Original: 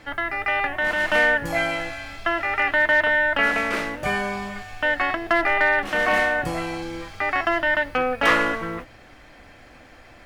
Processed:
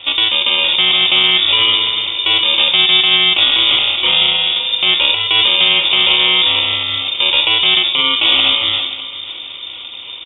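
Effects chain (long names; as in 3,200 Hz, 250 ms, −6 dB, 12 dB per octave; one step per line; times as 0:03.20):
in parallel at +1 dB: downward compressor 6 to 1, threshold −31 dBFS, peak gain reduction 16.5 dB
on the sum: decimation without filtering 23×
on a send: repeating echo 521 ms, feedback 32%, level −18 dB
on the sum: rectangular room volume 2,600 cubic metres, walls furnished, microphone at 1.5 metres
voice inversion scrambler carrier 3,600 Hz
boost into a limiter +9 dB
level −1 dB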